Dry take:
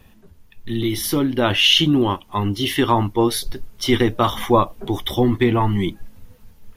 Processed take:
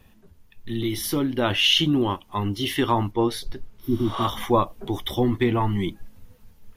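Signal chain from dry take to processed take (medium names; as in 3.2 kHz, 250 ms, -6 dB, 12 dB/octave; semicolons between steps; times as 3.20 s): 3.82–4.22 s: spectral replace 380–11000 Hz both; 3.11–3.84 s: treble shelf 6.5 kHz -10.5 dB; trim -4.5 dB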